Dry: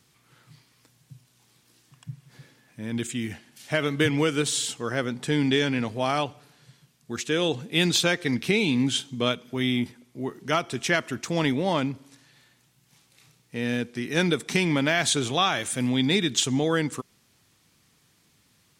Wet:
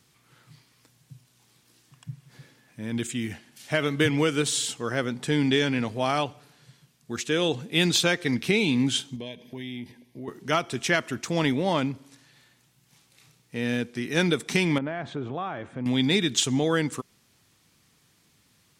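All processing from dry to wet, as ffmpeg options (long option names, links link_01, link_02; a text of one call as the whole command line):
ffmpeg -i in.wav -filter_complex "[0:a]asettb=1/sr,asplit=3[link_01][link_02][link_03];[link_01]atrim=end=9.164[link_04];[link_02]atrim=start=9.16:end=10.28,asetpts=PTS-STARTPTS,afade=type=in:duration=0.004:curve=qsin,afade=type=out:start_time=1.116:duration=0.004:curve=qsin,asuperstop=centerf=1300:order=20:qfactor=2.6,acompressor=threshold=-36dB:ratio=3:attack=3.2:release=140:knee=1:detection=peak,equalizer=frequency=7500:width=2.4:gain=-9[link_05];[link_03]atrim=start=10.276[link_06];[link_04][link_05]acrossfade=duration=0.004:curve1=hsin:curve2=qsin[link_07];[link_07][link_06]acrossfade=duration=0.004:curve1=qsin:curve2=hsin,asettb=1/sr,asplit=3[link_08][link_09][link_10];[link_08]atrim=end=14.784[link_11];[link_09]atrim=start=14.78:end=15.86,asetpts=PTS-STARTPTS,afade=type=in:duration=0.004:curve=qsin,afade=type=out:start_time=1.076:duration=0.004:curve=qsin,lowpass=1200,acompressor=threshold=-31dB:ratio=2:attack=3.2:release=140:knee=1:detection=peak[link_12];[link_10]atrim=start=15.856[link_13];[link_11][link_12]acrossfade=duration=0.004:curve1=hsin:curve2=qsin[link_14];[link_14][link_13]acrossfade=duration=0.004:curve1=qsin:curve2=hsin" out.wav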